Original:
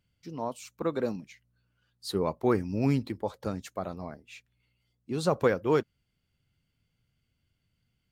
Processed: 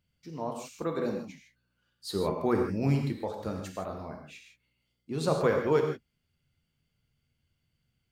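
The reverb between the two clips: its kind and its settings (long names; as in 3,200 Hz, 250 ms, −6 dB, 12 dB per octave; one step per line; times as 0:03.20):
reverb whose tail is shaped and stops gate 180 ms flat, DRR 2 dB
level −2.5 dB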